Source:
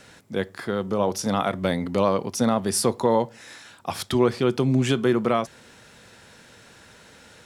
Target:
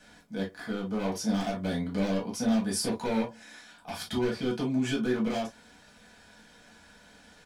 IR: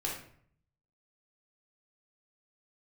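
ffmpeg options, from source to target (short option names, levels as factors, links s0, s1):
-filter_complex "[0:a]aecho=1:1:4.1:0.38,acrossover=split=600|2900[s0][s1][s2];[s1]aeval=exprs='0.0398*(abs(mod(val(0)/0.0398+3,4)-2)-1)':c=same[s3];[s0][s3][s2]amix=inputs=3:normalize=0[s4];[1:a]atrim=start_sample=2205,afade=t=out:st=0.18:d=0.01,atrim=end_sample=8379,asetrate=88200,aresample=44100[s5];[s4][s5]afir=irnorm=-1:irlink=0,volume=0.631"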